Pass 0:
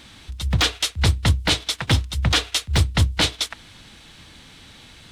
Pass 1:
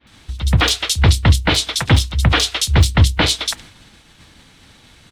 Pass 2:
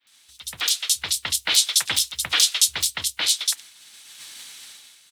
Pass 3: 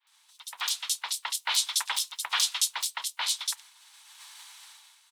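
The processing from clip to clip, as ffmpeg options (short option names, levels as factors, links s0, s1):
-filter_complex "[0:a]acrossover=split=3300[s0][s1];[s1]adelay=70[s2];[s0][s2]amix=inputs=2:normalize=0,agate=range=0.0224:threshold=0.01:ratio=3:detection=peak,volume=2.11"
-af "aderivative,dynaudnorm=f=100:g=11:m=6.31,volume=0.891"
-af "highpass=f=940:t=q:w=4.7,volume=0.376"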